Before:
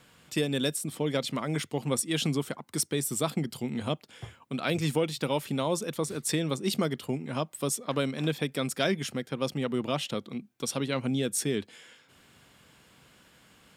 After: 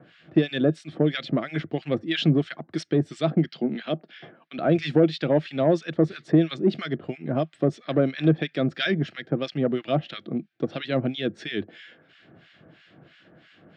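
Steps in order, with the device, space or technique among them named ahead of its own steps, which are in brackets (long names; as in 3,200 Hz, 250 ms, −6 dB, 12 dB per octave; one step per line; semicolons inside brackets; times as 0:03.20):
guitar amplifier with harmonic tremolo (two-band tremolo in antiphase 3 Hz, depth 100%, crossover 1,300 Hz; soft clipping −20.5 dBFS, distortion −19 dB; loudspeaker in its box 98–4,100 Hz, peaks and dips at 100 Hz +4 dB, 160 Hz +7 dB, 330 Hz +10 dB, 660 Hz +9 dB, 970 Hz −10 dB, 1,700 Hz +6 dB)
0:03.48–0:04.59: elliptic band-pass filter 180–5,600 Hz
level +7 dB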